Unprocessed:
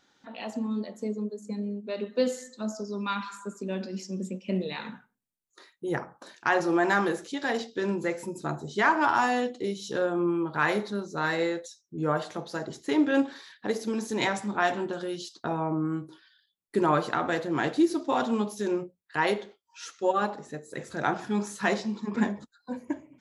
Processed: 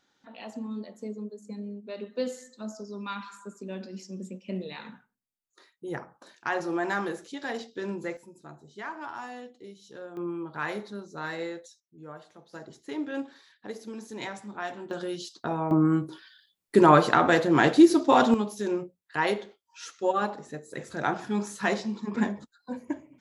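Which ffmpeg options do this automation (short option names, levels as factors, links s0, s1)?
-af "asetnsamples=n=441:p=0,asendcmd='8.17 volume volume -15dB;10.17 volume volume -7dB;11.8 volume volume -17dB;12.53 volume volume -9.5dB;14.91 volume volume 0dB;15.71 volume volume 7dB;18.34 volume volume -0.5dB',volume=0.562"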